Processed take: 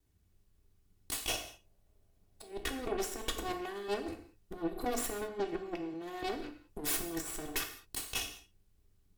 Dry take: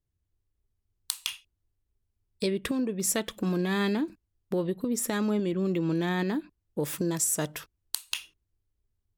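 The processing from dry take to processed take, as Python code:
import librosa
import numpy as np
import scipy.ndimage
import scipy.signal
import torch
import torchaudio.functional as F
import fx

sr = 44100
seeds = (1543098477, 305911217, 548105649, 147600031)

y = fx.lower_of_two(x, sr, delay_ms=2.7)
y = fx.peak_eq(y, sr, hz=620.0, db=13.5, octaves=0.68, at=(1.29, 2.52))
y = fx.highpass(y, sr, hz=150.0, slope=12, at=(5.29, 5.94))
y = fx.over_compress(y, sr, threshold_db=-37.0, ratio=-0.5)
y = fx.tube_stage(y, sr, drive_db=36.0, bias=0.7)
y = fx.rev_gated(y, sr, seeds[0], gate_ms=230, shape='falling', drr_db=5.0)
y = y * 10.0 ** (6.5 / 20.0)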